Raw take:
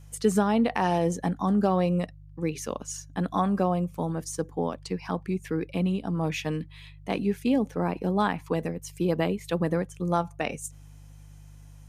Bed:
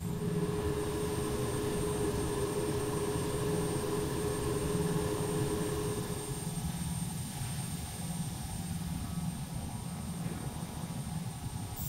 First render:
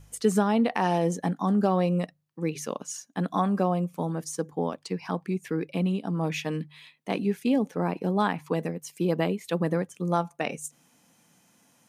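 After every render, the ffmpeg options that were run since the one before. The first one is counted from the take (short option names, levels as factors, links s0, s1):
-af "bandreject=f=50:t=h:w=4,bandreject=f=100:t=h:w=4,bandreject=f=150:t=h:w=4"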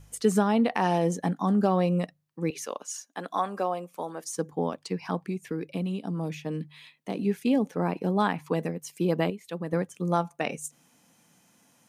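-filter_complex "[0:a]asettb=1/sr,asplit=3[s0][s1][s2];[s0]atrim=end=2.504[s3];[s1]atrim=start=2.5:end=4.37,asetpts=PTS-STARTPTS,afade=t=in:d=0.004:c=qsin,afade=t=out:st=1.866:d=0.004:c=qsin,highpass=450[s4];[s2]atrim=start=4.366[s5];[s3][s4]acrossfade=d=0.004:c1=hsin:c2=qsin[s6];[s6][s5]acrossfade=d=0.004:c1=qsin:c2=hsin,asettb=1/sr,asplit=3[s7][s8][s9];[s7]atrim=end=5.244[s10];[s8]atrim=start=5.24:end=7.19,asetpts=PTS-STARTPTS,afade=t=in:d=0.004:c=qsin,afade=t=out:st=1.946:d=0.004:c=qsin,acrossover=split=700|3500[s11][s12][s13];[s11]acompressor=threshold=0.0398:ratio=4[s14];[s12]acompressor=threshold=0.00447:ratio=4[s15];[s13]acompressor=threshold=0.00316:ratio=4[s16];[s14][s15][s16]amix=inputs=3:normalize=0[s17];[s9]atrim=start=7.186[s18];[s10][s17]acrossfade=d=0.004:c1=hsin:c2=qsin[s19];[s19][s18]acrossfade=d=0.004:c1=qsin:c2=hsin,asplit=3[s20][s21][s22];[s20]atrim=end=9.302[s23];[s21]atrim=start=9.298:end=9.732,asetpts=PTS-STARTPTS,volume=0.422[s24];[s22]atrim=start=9.728[s25];[s23][s24]acrossfade=d=0.004:c1=hsin:c2=hsin[s26];[s26][s25]acrossfade=d=0.004:c1=hsin:c2=hsin"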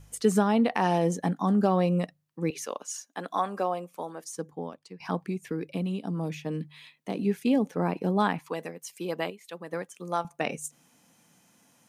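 -filter_complex "[0:a]asettb=1/sr,asplit=3[s0][s1][s2];[s0]atrim=end=8.394[s3];[s1]atrim=start=8.39:end=10.25,asetpts=PTS-STARTPTS,afade=t=in:d=0.004:c=qsin,afade=t=out:st=1.856:d=0.004:c=qsin,highpass=f=720:p=1[s4];[s2]atrim=start=10.246[s5];[s3][s4]acrossfade=d=0.004:c1=hsin:c2=qsin[s6];[s6][s5]acrossfade=d=0.004:c1=qsin:c2=hsin,asplit=2[s7][s8];[s7]atrim=end=5,asetpts=PTS-STARTPTS,afade=t=out:st=3.76:d=1.24:silence=0.158489[s9];[s8]atrim=start=5,asetpts=PTS-STARTPTS,afade=t=in:d=0.004:c=hsin:silence=0.158489[s10];[s9][s10]concat=n=2:v=0:a=1"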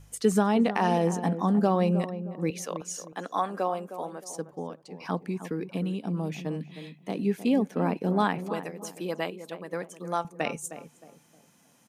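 -filter_complex "[0:a]asplit=2[s0][s1];[s1]adelay=311,lowpass=f=1100:p=1,volume=0.299,asplit=2[s2][s3];[s3]adelay=311,lowpass=f=1100:p=1,volume=0.36,asplit=2[s4][s5];[s5]adelay=311,lowpass=f=1100:p=1,volume=0.36,asplit=2[s6][s7];[s7]adelay=311,lowpass=f=1100:p=1,volume=0.36[s8];[s0][s2][s4][s6][s8]amix=inputs=5:normalize=0"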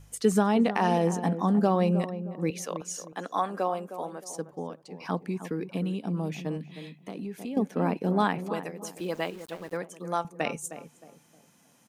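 -filter_complex "[0:a]asettb=1/sr,asplit=3[s0][s1][s2];[s0]atrim=end=6.574[s3];[s1]atrim=start=6.57:end=7.57,asetpts=PTS-STARTPTS,afade=t=in:d=0.004:c=qsin,afade=t=out:st=0.996:d=0.004:c=qsin,acompressor=threshold=0.0224:ratio=6:attack=3.2:release=140:knee=1:detection=peak[s4];[s2]atrim=start=7.566[s5];[s3][s4]acrossfade=d=0.004:c1=hsin:c2=qsin[s6];[s6][s5]acrossfade=d=0.004:c1=qsin:c2=hsin,asettb=1/sr,asplit=3[s7][s8][s9];[s7]atrim=end=8.984[s10];[s8]atrim=start=8.98:end=9.77,asetpts=PTS-STARTPTS,afade=t=in:d=0.004:c=qsin,afade=t=out:st=0.786:d=0.004:c=qsin,aeval=exprs='val(0)*gte(abs(val(0)),0.00447)':c=same[s11];[s9]atrim=start=9.766[s12];[s10][s11]acrossfade=d=0.004:c1=hsin:c2=qsin[s13];[s13][s12]acrossfade=d=0.004:c1=qsin:c2=hsin"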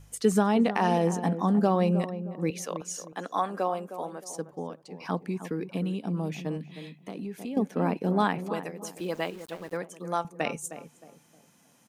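-af anull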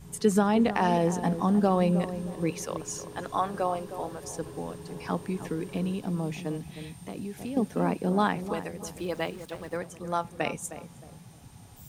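-filter_complex "[1:a]volume=0.282[s0];[0:a][s0]amix=inputs=2:normalize=0"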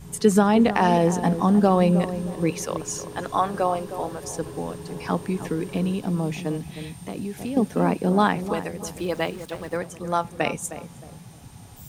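-af "volume=1.88"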